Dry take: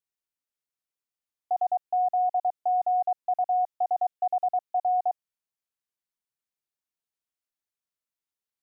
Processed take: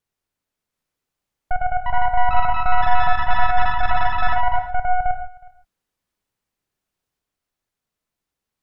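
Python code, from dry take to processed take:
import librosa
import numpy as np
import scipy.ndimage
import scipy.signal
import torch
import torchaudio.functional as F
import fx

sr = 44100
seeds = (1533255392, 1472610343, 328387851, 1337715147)

p1 = fx.tracing_dist(x, sr, depth_ms=0.22)
p2 = fx.tilt_eq(p1, sr, slope=-2.0)
p3 = fx.over_compress(p2, sr, threshold_db=-26.0, ratio=-1.0)
p4 = p2 + F.gain(torch.from_numpy(p3), 2.0).numpy()
p5 = fx.rev_gated(p4, sr, seeds[0], gate_ms=180, shape='flat', drr_db=6.5)
p6 = fx.echo_pitch(p5, sr, ms=730, semitones=5, count=3, db_per_echo=-3.0)
p7 = p6 + fx.echo_single(p6, sr, ms=367, db=-23.5, dry=0)
y = F.gain(torch.from_numpy(p7), -3.0).numpy()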